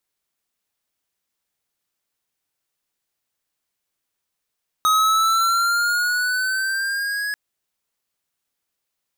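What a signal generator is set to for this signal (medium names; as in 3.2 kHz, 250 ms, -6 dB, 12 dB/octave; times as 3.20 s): gliding synth tone square, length 2.49 s, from 1.26 kHz, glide +5 st, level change -9 dB, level -16 dB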